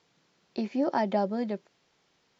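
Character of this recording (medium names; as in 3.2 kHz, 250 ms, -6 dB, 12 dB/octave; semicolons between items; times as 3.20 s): noise floor -71 dBFS; spectral tilt -3.5 dB/octave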